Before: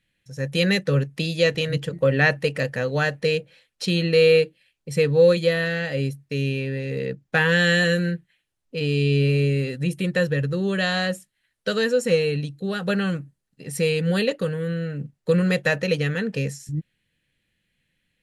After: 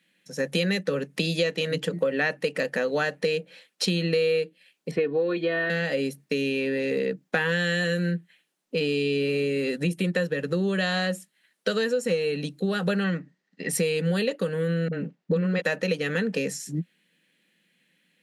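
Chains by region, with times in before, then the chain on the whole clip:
0:04.91–0:05.70: high-frequency loss of the air 430 metres + comb filter 2.8 ms, depth 75%
0:13.04–0:13.69: low-pass filter 5,900 Hz 24 dB per octave + parametric band 1,900 Hz +14 dB 0.22 octaves
0:14.88–0:15.62: high-frequency loss of the air 140 metres + all-pass dispersion highs, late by 46 ms, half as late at 300 Hz
whole clip: elliptic high-pass filter 170 Hz, stop band 40 dB; downward compressor 5 to 1, threshold −30 dBFS; level +7 dB

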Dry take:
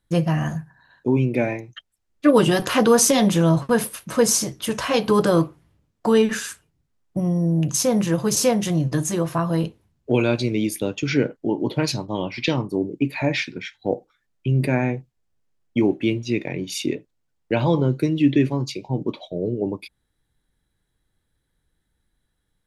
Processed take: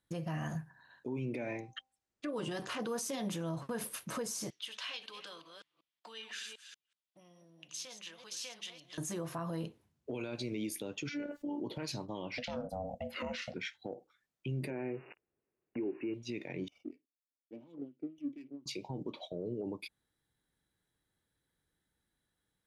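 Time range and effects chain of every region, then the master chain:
0:01.22–0:02.82: low-pass filter 9,500 Hz 24 dB per octave + hum removal 261.1 Hz, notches 4
0:04.50–0:08.98: delay that plays each chunk backwards 187 ms, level −9.5 dB + downward compressor 2.5 to 1, threshold −22 dBFS + resonant band-pass 3,300 Hz, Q 2.1
0:11.09–0:11.60: phases set to zero 290 Hz + envelope flattener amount 50%
0:12.38–0:13.54: bass and treble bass +9 dB, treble +4 dB + ring modulation 370 Hz
0:14.70–0:16.14: spike at every zero crossing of −18 dBFS + linear-phase brick-wall low-pass 2,900 Hz + parametric band 380 Hz +12.5 dB 0.82 octaves
0:16.68–0:18.66: auto-filter band-pass sine 4.2 Hz 430–1,800 Hz + formant resonators in series i + windowed peak hold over 5 samples
whole clip: high-pass filter 160 Hz 6 dB per octave; downward compressor 4 to 1, threshold −26 dBFS; brickwall limiter −24 dBFS; level −6 dB

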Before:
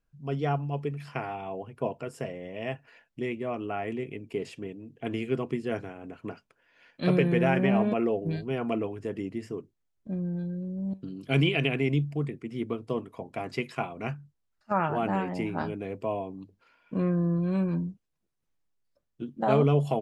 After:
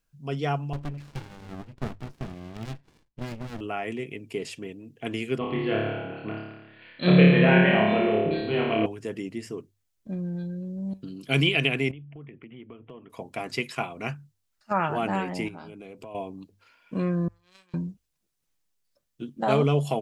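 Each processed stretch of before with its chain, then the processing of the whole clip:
0:00.73–0:03.61: high-pass filter 53 Hz + high-frequency loss of the air 150 metres + windowed peak hold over 65 samples
0:05.38–0:08.86: Butterworth low-pass 4,300 Hz 96 dB per octave + flutter between parallel walls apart 4.8 metres, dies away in 1.1 s
0:11.91–0:13.10: Butterworth low-pass 3,300 Hz 96 dB per octave + downward compressor 5 to 1, threshold −42 dBFS
0:15.48–0:16.15: downward compressor, threshold −39 dBFS + notch filter 1,800 Hz, Q 5.4
0:17.28–0:17.74: first difference + power curve on the samples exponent 2 + double-tracking delay 28 ms −11 dB
whole clip: high-shelf EQ 2,400 Hz +10.5 dB; mains-hum notches 50/100 Hz

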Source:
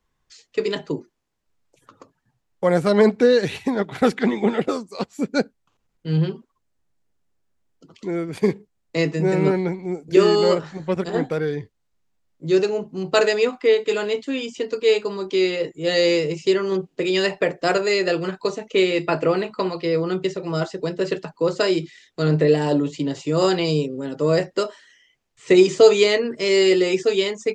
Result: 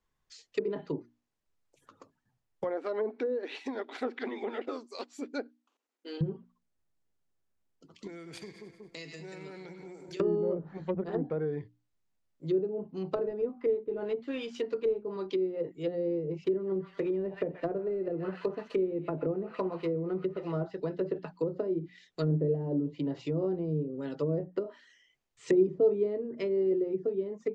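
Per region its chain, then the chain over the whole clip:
0:02.64–0:06.21: linear-phase brick-wall high-pass 230 Hz + downward compressor 1.5 to 1, threshold −32 dBFS
0:08.07–0:10.20: tilt shelving filter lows −5 dB, about 1,300 Hz + echo with a time of its own for lows and highs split 1,100 Hz, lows 183 ms, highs 98 ms, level −14 dB + downward compressor, threshold −34 dBFS
0:13.11–0:15.16: variable-slope delta modulation 64 kbit/s + double-tracking delay 13 ms −10 dB
0:16.44–0:20.66: running median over 9 samples + delay with a high-pass on its return 126 ms, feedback 53%, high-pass 1,400 Hz, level −7.5 dB
whole clip: treble cut that deepens with the level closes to 380 Hz, closed at −17 dBFS; mains-hum notches 60/120/180/240/300 Hz; dynamic equaliser 4,500 Hz, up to +4 dB, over −53 dBFS, Q 1.1; level −8 dB

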